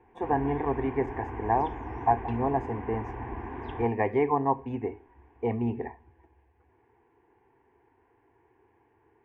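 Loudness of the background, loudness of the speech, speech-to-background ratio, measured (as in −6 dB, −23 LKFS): −39.0 LKFS, −29.5 LKFS, 9.5 dB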